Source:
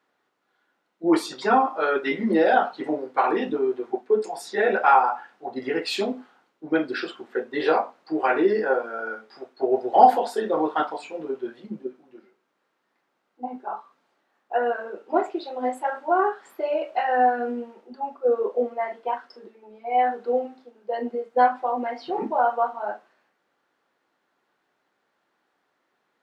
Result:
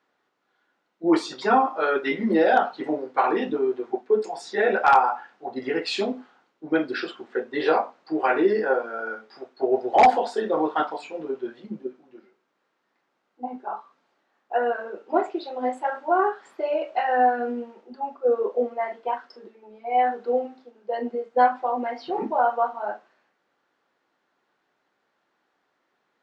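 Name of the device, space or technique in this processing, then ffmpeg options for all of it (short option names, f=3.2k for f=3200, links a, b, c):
synthesiser wavefolder: -af "aeval=exprs='0.422*(abs(mod(val(0)/0.422+3,4)-2)-1)':c=same,lowpass=f=7.5k:w=0.5412,lowpass=f=7.5k:w=1.3066"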